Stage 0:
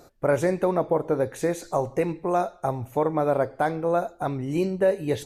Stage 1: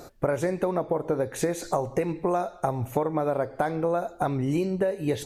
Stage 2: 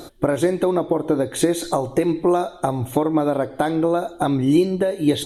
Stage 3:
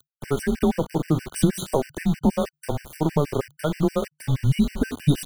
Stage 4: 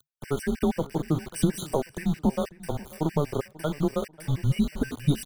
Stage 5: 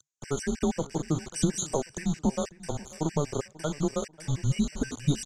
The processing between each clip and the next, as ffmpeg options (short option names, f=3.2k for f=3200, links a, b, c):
-af "acompressor=threshold=-29dB:ratio=10,volume=7dB"
-af "superequalizer=6b=2.24:13b=3.16:16b=2.24,volume=4.5dB"
-af "aeval=exprs='val(0)*gte(abs(val(0)),0.0355)':c=same,afreqshift=-150,afftfilt=real='re*gt(sin(2*PI*6.3*pts/sr)*(1-2*mod(floor(b*sr/1024/1500),2)),0)':imag='im*gt(sin(2*PI*6.3*pts/sr)*(1-2*mod(floor(b*sr/1024/1500),2)),0)':win_size=1024:overlap=0.75"
-filter_complex "[0:a]asplit=2[a][b];[b]adelay=540,lowpass=f=2.9k:p=1,volume=-20dB,asplit=2[c][d];[d]adelay=540,lowpass=f=2.9k:p=1,volume=0.33,asplit=2[e][f];[f]adelay=540,lowpass=f=2.9k:p=1,volume=0.33[g];[a][c][e][g]amix=inputs=4:normalize=0,volume=-4dB"
-af "lowpass=f=6.8k:t=q:w=7.8,volume=-2.5dB"